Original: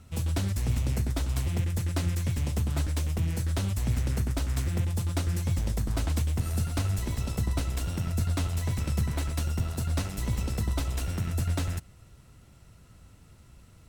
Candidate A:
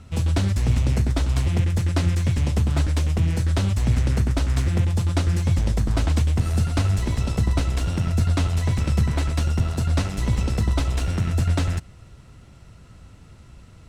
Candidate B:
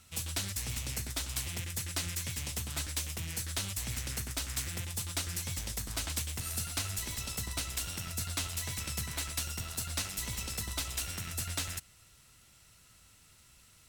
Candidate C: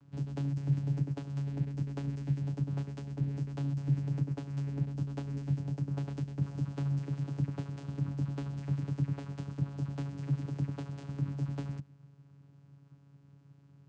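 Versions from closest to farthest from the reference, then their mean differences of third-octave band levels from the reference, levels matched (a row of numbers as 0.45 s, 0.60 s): A, B, C; 2.0 dB, 7.0 dB, 11.0 dB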